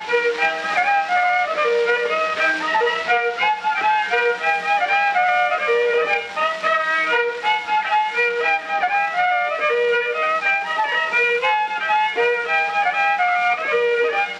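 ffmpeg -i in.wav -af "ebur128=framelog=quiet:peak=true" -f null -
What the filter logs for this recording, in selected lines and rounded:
Integrated loudness:
  I:         -18.4 LUFS
  Threshold: -28.4 LUFS
Loudness range:
  LRA:         0.7 LU
  Threshold: -38.4 LUFS
  LRA low:   -18.8 LUFS
  LRA high:  -18.1 LUFS
True peak:
  Peak:       -6.7 dBFS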